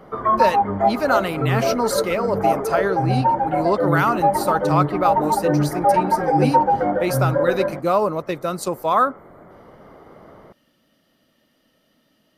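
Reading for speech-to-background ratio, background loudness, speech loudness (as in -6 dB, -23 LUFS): -3.0 dB, -20.5 LUFS, -23.5 LUFS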